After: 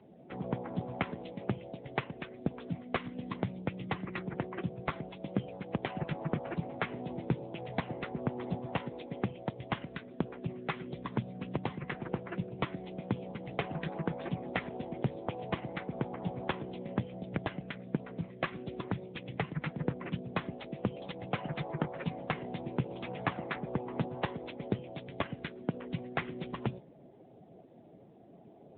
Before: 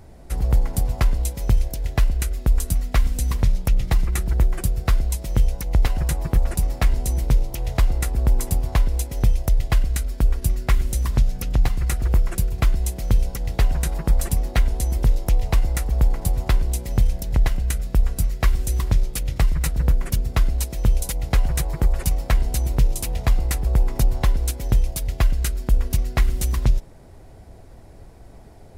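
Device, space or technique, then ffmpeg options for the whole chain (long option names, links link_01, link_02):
mobile call with aggressive noise cancelling: -filter_complex "[0:a]asplit=3[link_01][link_02][link_03];[link_01]afade=type=out:start_time=22.89:duration=0.02[link_04];[link_02]equalizer=frequency=1400:width=1.1:gain=4.5,afade=type=in:start_time=22.89:duration=0.02,afade=type=out:start_time=23.59:duration=0.02[link_05];[link_03]afade=type=in:start_time=23.59:duration=0.02[link_06];[link_04][link_05][link_06]amix=inputs=3:normalize=0,highpass=frequency=150:width=0.5412,highpass=frequency=150:width=1.3066,afftdn=noise_reduction=12:noise_floor=-47,volume=-2.5dB" -ar 8000 -c:a libopencore_amrnb -b:a 7950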